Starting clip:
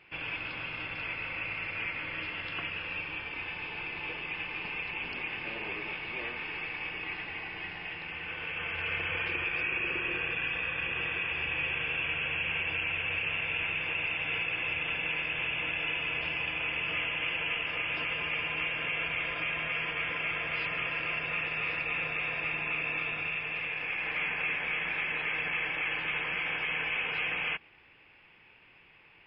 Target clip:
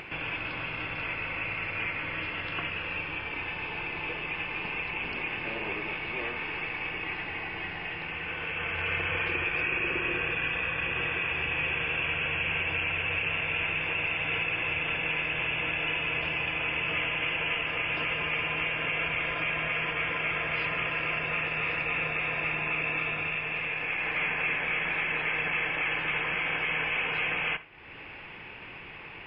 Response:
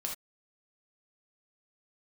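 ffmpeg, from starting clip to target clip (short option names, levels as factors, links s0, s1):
-filter_complex "[0:a]lowpass=f=2300:p=1,acompressor=mode=upward:threshold=0.0126:ratio=2.5,asplit=2[s0][s1];[1:a]atrim=start_sample=2205[s2];[s1][s2]afir=irnorm=-1:irlink=0,volume=0.299[s3];[s0][s3]amix=inputs=2:normalize=0,volume=1.5"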